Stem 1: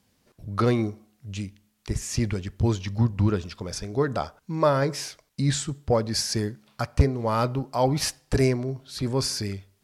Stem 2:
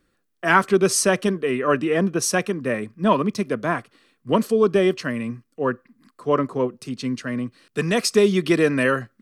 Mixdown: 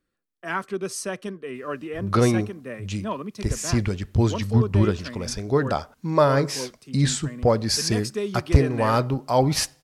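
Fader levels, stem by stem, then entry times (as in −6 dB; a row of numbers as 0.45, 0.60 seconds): +3.0, −11.5 decibels; 1.55, 0.00 seconds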